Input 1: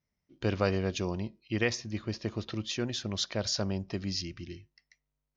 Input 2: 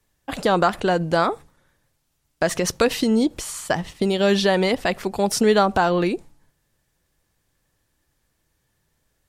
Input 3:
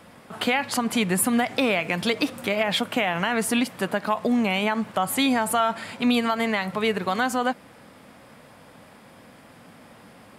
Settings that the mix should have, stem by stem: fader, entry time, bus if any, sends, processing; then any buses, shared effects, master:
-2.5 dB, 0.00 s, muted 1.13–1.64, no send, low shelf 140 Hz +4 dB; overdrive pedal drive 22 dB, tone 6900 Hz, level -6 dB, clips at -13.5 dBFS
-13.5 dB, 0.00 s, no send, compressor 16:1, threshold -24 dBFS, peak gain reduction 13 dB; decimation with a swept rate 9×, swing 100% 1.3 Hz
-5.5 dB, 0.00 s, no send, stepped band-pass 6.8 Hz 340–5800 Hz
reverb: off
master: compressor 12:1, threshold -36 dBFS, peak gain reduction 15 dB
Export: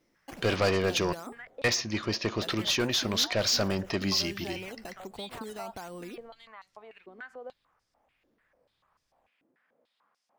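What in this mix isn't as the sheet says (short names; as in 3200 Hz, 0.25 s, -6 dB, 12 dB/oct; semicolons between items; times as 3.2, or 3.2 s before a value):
stem 3 -5.5 dB -> -13.0 dB; master: missing compressor 12:1, threshold -36 dBFS, peak gain reduction 15 dB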